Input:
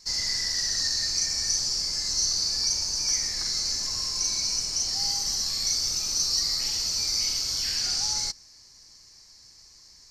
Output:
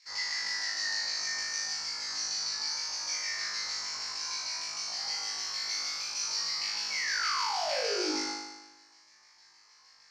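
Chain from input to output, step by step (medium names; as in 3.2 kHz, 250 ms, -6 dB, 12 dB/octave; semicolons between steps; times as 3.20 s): LFO band-pass saw down 6.5 Hz 830–2600 Hz; painted sound fall, 6.90–8.16 s, 270–2300 Hz -42 dBFS; flutter echo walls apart 3.3 m, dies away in 1.1 s; trim +2 dB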